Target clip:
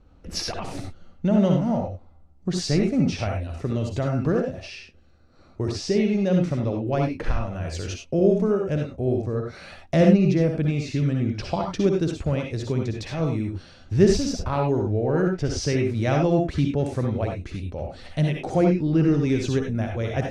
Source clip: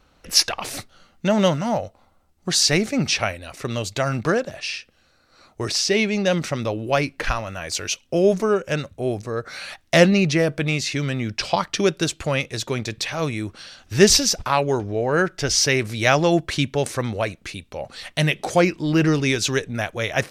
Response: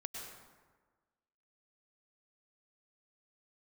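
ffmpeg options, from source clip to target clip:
-filter_complex "[0:a]lowpass=8.7k,tiltshelf=f=680:g=9.5,asplit=2[a][b];[b]acompressor=threshold=-22dB:ratio=6,volume=-1dB[c];[a][c]amix=inputs=2:normalize=0[d];[1:a]atrim=start_sample=2205,afade=t=out:st=0.24:d=0.01,atrim=end_sample=11025,asetrate=79380,aresample=44100[e];[d][e]afir=irnorm=-1:irlink=0"

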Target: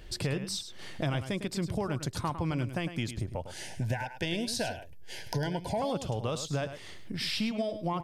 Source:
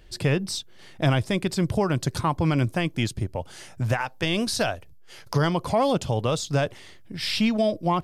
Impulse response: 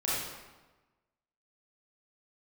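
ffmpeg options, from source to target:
-filter_complex "[0:a]acompressor=threshold=-39dB:ratio=2.5,asettb=1/sr,asplit=3[a][b][c];[a]atrim=end=3.544[d];[b]atrim=start=3.54:end=5.82,asetpts=PTS-STARTPTS,afade=t=in:d=0.004:c=qsin,afade=t=out:st=2.276:d=0.004:c=qsin,asuperstop=centerf=1200:order=20:qfactor=2.8[e];[c]atrim=start=5.816[f];[d][e]acrossfade=d=0.004:c1=hsin:c2=qsin[g];[g][f]acrossfade=d=0.004:c1=qsin:c2=hsin,aecho=1:1:104:0.299,volume=3.5dB"

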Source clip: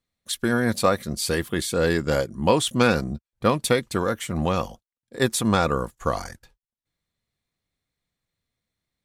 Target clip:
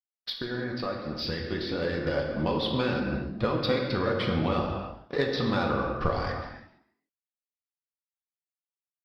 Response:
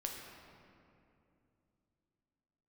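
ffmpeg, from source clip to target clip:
-filter_complex "[0:a]aresample=11025,aeval=exprs='sgn(val(0))*max(abs(val(0))-0.00473,0)':c=same,aresample=44100,acompressor=threshold=-33dB:ratio=16,asplit=2[a][b];[b]asoftclip=type=tanh:threshold=-36dB,volume=-8dB[c];[a][c]amix=inputs=2:normalize=0,flanger=delay=0.5:depth=4.1:regen=61:speed=1.5:shape=triangular,asetrate=45392,aresample=44100,atempo=0.971532,dynaudnorm=f=240:g=17:m=7dB,asplit=4[d][e][f][g];[e]adelay=136,afreqshift=62,volume=-18.5dB[h];[f]adelay=272,afreqshift=124,volume=-27.4dB[i];[g]adelay=408,afreqshift=186,volume=-36.2dB[j];[d][h][i][j]amix=inputs=4:normalize=0[k];[1:a]atrim=start_sample=2205,afade=t=out:st=0.39:d=0.01,atrim=end_sample=17640[l];[k][l]afir=irnorm=-1:irlink=0,volume=7.5dB" -ar 48000 -c:a libopus -b:a 48k

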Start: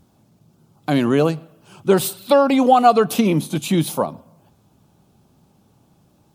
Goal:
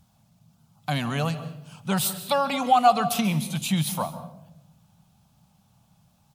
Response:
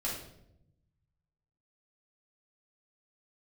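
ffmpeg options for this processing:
-filter_complex "[0:a]firequalizer=gain_entry='entry(190,0);entry(330,-21);entry(690,-1);entry(1500,-1);entry(2900,2)':delay=0.05:min_phase=1,asplit=2[a][b];[1:a]atrim=start_sample=2205,adelay=134[c];[b][c]afir=irnorm=-1:irlink=0,volume=-16.5dB[d];[a][d]amix=inputs=2:normalize=0,volume=-3.5dB"

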